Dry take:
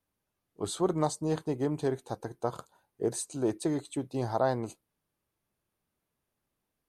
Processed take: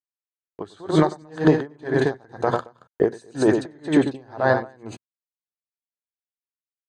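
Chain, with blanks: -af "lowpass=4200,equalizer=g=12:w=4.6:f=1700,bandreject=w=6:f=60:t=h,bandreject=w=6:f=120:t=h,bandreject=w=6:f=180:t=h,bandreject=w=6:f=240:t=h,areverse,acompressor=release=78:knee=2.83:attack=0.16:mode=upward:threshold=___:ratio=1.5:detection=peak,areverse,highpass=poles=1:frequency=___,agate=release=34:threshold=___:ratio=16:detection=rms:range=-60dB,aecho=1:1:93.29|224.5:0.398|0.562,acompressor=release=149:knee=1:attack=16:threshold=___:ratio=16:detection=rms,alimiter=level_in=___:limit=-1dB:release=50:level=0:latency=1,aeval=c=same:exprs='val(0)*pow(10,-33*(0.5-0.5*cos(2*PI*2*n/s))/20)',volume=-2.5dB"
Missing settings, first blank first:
-51dB, 110, -56dB, -34dB, 26dB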